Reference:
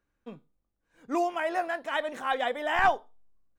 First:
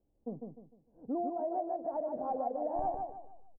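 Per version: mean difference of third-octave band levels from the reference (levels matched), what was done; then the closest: 12.5 dB: elliptic low-pass 760 Hz, stop band 80 dB; compression 5:1, threshold -38 dBFS, peak gain reduction 16.5 dB; feedback delay 151 ms, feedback 33%, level -4.5 dB; trim +4.5 dB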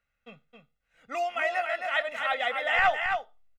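5.0 dB: peaking EQ 2.4 kHz +14.5 dB 1.6 oct; comb 1.5 ms, depth 77%; delay 267 ms -5.5 dB; trim -8 dB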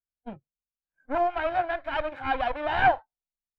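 6.5 dB: comb filter that takes the minimum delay 1.3 ms; spectral noise reduction 28 dB; distance through air 430 m; trim +5 dB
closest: second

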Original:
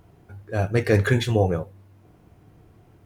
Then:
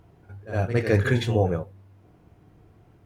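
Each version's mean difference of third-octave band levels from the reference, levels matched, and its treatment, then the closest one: 1.5 dB: treble shelf 6.5 kHz -6.5 dB; on a send: reverse echo 61 ms -11 dB; on the sum: trim -2 dB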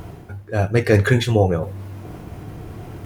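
6.0 dB: reverse; upward compressor, threshold -24 dBFS; reverse; trim +4 dB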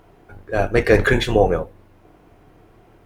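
2.5 dB: octave divider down 2 oct, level +2 dB; tone controls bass -12 dB, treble -6 dB; trim +7.5 dB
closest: first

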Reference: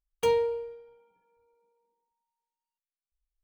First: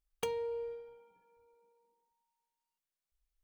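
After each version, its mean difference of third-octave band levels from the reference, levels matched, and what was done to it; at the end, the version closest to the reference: 3.5 dB: compression 16:1, threshold -35 dBFS, peak gain reduction 15.5 dB; trim +1.5 dB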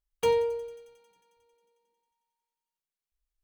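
1.0 dB: feedback echo behind a high-pass 90 ms, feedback 81%, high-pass 3.8 kHz, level -17.5 dB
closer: second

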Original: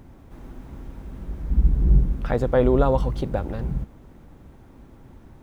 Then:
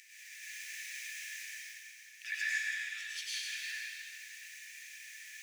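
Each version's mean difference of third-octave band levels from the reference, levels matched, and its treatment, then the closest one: 28.0 dB: compression 12:1, threshold -29 dBFS, peak gain reduction 18.5 dB; rippled Chebyshev high-pass 1.7 kHz, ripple 9 dB; plate-style reverb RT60 2.5 s, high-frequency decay 0.95×, pre-delay 85 ms, DRR -9 dB; trim +14.5 dB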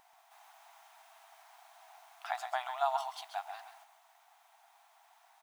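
19.0 dB: brick-wall FIR high-pass 650 Hz; peaking EQ 1.4 kHz -7 dB 1.6 oct; delay 134 ms -9 dB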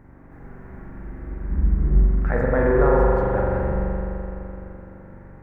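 6.0 dB: resonant high shelf 2.5 kHz -10.5 dB, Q 3; feedback comb 160 Hz, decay 0.94 s, harmonics odd; spring tank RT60 3.4 s, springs 42 ms, chirp 65 ms, DRR -4.5 dB; trim +4 dB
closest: third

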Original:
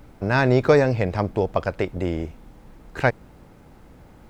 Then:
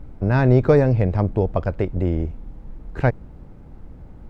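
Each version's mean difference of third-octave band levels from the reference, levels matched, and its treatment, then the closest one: 4.5 dB: tilt EQ -3 dB/octave; trim -3 dB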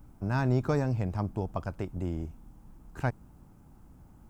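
3.5 dB: graphic EQ 500/2000/4000 Hz -12/-12/-10 dB; trim -4.5 dB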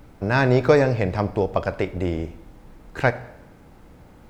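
1.5 dB: plate-style reverb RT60 0.88 s, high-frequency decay 0.9×, DRR 12.5 dB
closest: third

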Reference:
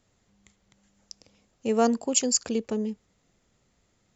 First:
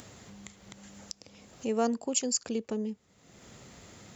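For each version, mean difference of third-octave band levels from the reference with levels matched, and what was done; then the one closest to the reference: 2.0 dB: in parallel at -0.5 dB: compression, threshold -32 dBFS, peak gain reduction 14.5 dB; on the sum: high-pass 76 Hz; upward compressor, threshold -26 dBFS; trim -7.5 dB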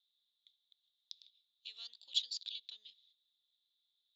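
14.0 dB: gate -56 dBFS, range -12 dB; compression 4:1, threshold -26 dBFS, peak gain reduction 8.5 dB; Butterworth band-pass 3.7 kHz, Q 6.5; trim +16 dB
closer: first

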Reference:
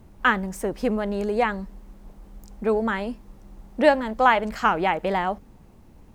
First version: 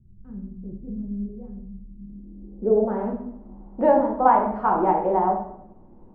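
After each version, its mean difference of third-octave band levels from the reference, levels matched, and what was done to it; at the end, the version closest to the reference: 10.5 dB: peaking EQ 310 Hz +8 dB 1.4 oct; simulated room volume 150 m³, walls mixed, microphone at 1 m; low-pass sweep 120 Hz -> 950 Hz, 1.79–3.10 s; trim -9 dB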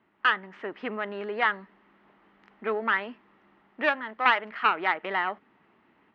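7.0 dB: tracing distortion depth 0.19 ms; level rider gain up to 6 dB; cabinet simulation 390–3100 Hz, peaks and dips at 520 Hz -10 dB, 750 Hz -4 dB, 1.3 kHz +5 dB, 1.9 kHz +8 dB, 3 kHz +4 dB; trim -7.5 dB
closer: second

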